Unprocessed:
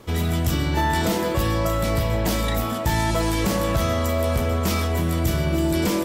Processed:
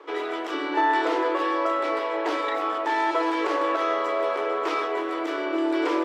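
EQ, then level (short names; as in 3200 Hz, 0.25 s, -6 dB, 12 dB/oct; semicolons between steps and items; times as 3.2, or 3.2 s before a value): rippled Chebyshev high-pass 290 Hz, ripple 6 dB; LPF 2800 Hz 12 dB/oct; +4.5 dB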